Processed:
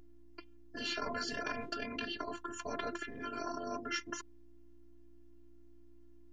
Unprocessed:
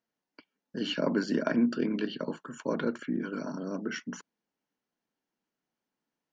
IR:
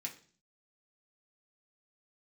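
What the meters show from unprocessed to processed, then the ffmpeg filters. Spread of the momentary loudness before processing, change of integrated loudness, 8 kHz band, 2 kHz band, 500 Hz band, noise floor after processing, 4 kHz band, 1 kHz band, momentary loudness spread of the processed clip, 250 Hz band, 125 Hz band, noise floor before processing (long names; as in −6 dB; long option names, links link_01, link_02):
11 LU, −8.0 dB, can't be measured, −2.0 dB, −9.5 dB, −55 dBFS, −2.0 dB, +1.0 dB, 18 LU, −15.0 dB, −14.0 dB, below −85 dBFS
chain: -af "aeval=exprs='val(0)+0.00158*(sin(2*PI*60*n/s)+sin(2*PI*2*60*n/s)/2+sin(2*PI*3*60*n/s)/3+sin(2*PI*4*60*n/s)/4+sin(2*PI*5*60*n/s)/5)':channel_layout=same,afftfilt=real='hypot(re,im)*cos(PI*b)':imag='0':win_size=512:overlap=0.75,afftfilt=real='re*lt(hypot(re,im),0.0708)':imag='im*lt(hypot(re,im),0.0708)':win_size=1024:overlap=0.75,volume=6dB"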